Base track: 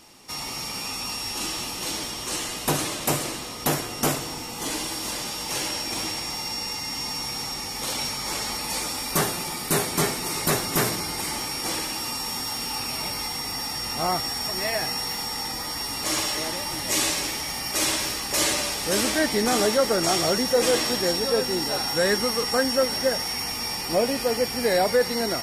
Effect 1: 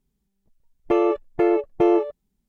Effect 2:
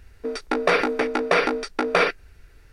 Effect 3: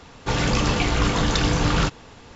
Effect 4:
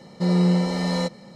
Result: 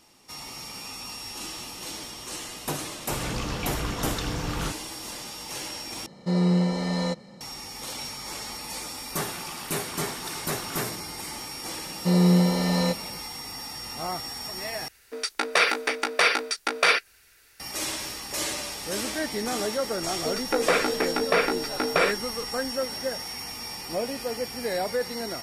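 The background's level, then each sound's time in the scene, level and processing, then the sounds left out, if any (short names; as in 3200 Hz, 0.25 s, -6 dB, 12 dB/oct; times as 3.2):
base track -7 dB
2.83 add 3 -10 dB
6.06 replace with 4 -3 dB
8.92 add 3 -15 dB + steep high-pass 690 Hz
11.85 add 4
14.88 replace with 2 -3 dB + tilt +4.5 dB/oct
20.01 add 2 -3.5 dB
not used: 1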